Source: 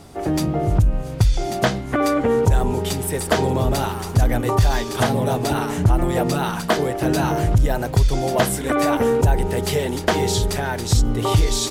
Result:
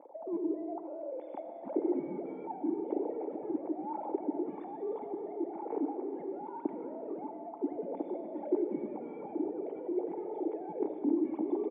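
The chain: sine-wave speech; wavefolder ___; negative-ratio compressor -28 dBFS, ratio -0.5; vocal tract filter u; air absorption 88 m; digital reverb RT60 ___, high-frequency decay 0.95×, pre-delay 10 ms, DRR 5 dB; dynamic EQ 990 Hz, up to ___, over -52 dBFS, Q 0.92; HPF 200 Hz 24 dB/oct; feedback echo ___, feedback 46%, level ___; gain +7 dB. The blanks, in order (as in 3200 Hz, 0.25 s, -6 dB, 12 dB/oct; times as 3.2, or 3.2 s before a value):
-19 dBFS, 2.4 s, -5 dB, 0.206 s, -21.5 dB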